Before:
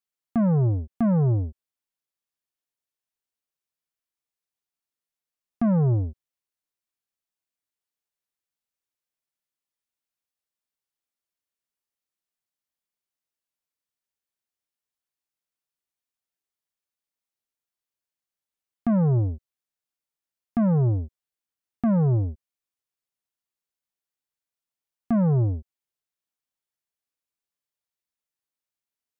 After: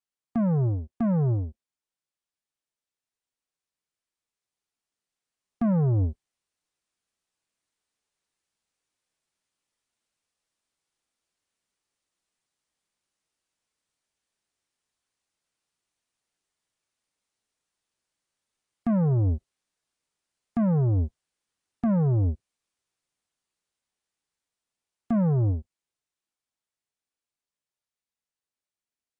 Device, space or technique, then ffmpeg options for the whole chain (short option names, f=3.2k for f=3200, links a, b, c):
low-bitrate web radio: -af "dynaudnorm=f=530:g=21:m=10dB,alimiter=limit=-17.5dB:level=0:latency=1,volume=-3dB" -ar 22050 -c:a aac -b:a 32k